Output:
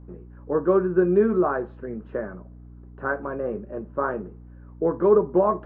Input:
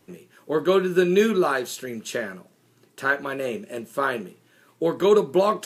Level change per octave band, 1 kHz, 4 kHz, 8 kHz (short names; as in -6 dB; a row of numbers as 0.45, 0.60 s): -1.0 dB, under -30 dB, under -40 dB